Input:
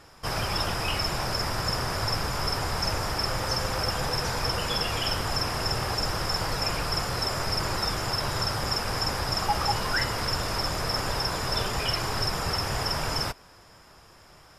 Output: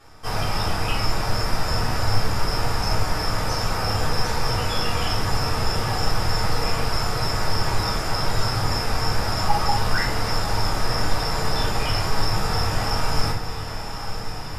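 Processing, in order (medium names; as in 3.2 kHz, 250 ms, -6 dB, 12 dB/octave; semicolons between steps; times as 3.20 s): echo that smears into a reverb 995 ms, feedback 77%, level -11 dB; simulated room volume 260 m³, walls furnished, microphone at 3.7 m; trim -4.5 dB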